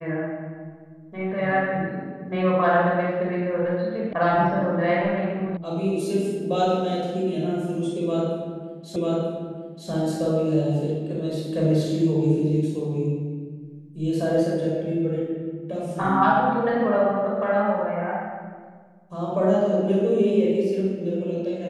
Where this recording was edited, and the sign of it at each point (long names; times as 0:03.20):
0:04.13: cut off before it has died away
0:05.57: cut off before it has died away
0:08.96: the same again, the last 0.94 s